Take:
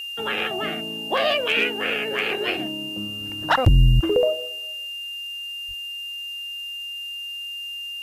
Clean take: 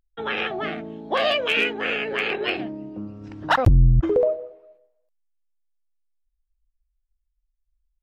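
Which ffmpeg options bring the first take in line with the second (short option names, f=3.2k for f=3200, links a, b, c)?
-filter_complex "[0:a]bandreject=f=2.8k:w=30,asplit=3[a][b][c];[a]afade=t=out:st=5.67:d=0.02[d];[b]highpass=f=140:w=0.5412,highpass=f=140:w=1.3066,afade=t=in:st=5.67:d=0.02,afade=t=out:st=5.79:d=0.02[e];[c]afade=t=in:st=5.79:d=0.02[f];[d][e][f]amix=inputs=3:normalize=0,afftdn=nr=30:nf=-33"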